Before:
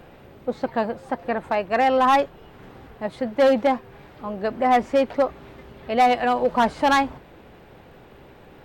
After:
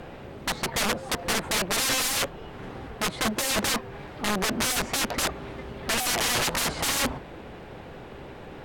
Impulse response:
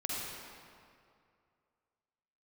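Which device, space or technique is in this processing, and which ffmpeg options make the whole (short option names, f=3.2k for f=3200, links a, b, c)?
overflowing digital effects unit: -af "aeval=exprs='(mod(17.8*val(0)+1,2)-1)/17.8':c=same,lowpass=13k,volume=5.5dB"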